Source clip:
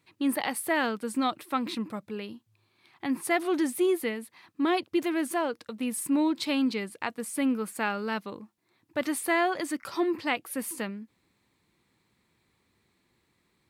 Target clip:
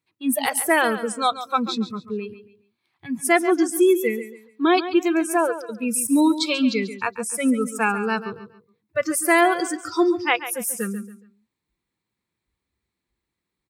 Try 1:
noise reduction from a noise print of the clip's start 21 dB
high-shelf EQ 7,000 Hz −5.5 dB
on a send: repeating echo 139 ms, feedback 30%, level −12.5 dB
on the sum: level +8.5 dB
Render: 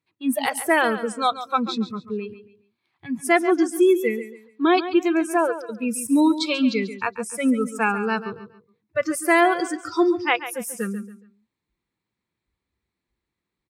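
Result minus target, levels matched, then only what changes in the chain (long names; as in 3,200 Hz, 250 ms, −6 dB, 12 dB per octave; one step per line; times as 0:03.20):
8,000 Hz band −5.5 dB
change: high-shelf EQ 7,000 Hz +3.5 dB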